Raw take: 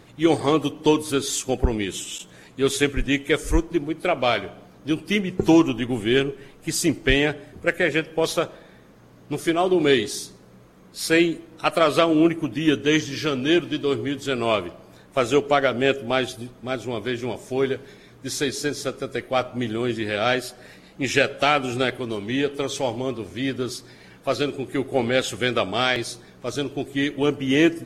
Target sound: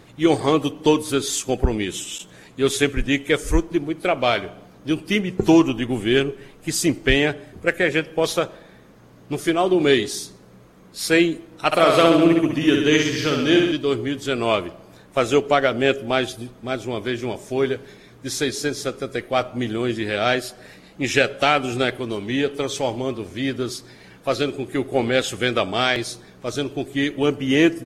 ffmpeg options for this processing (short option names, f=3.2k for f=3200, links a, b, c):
-filter_complex "[0:a]asplit=3[a][b][c];[a]afade=t=out:st=11.71:d=0.02[d];[b]aecho=1:1:60|126|198.6|278.5|366.3:0.631|0.398|0.251|0.158|0.1,afade=t=in:st=11.71:d=0.02,afade=t=out:st=13.71:d=0.02[e];[c]afade=t=in:st=13.71:d=0.02[f];[d][e][f]amix=inputs=3:normalize=0,volume=1.5dB"